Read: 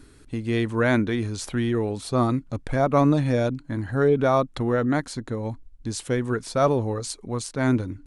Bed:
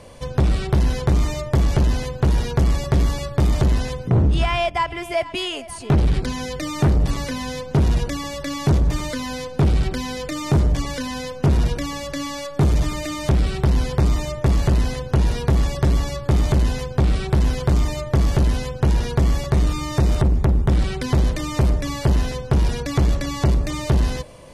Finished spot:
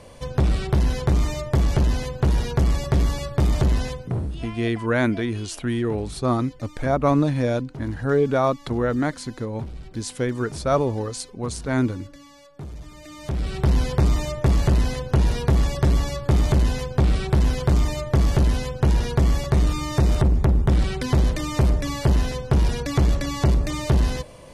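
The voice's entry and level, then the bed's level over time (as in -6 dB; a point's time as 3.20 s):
4.10 s, 0.0 dB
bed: 3.87 s -2 dB
4.58 s -19.5 dB
12.85 s -19.5 dB
13.69 s -1 dB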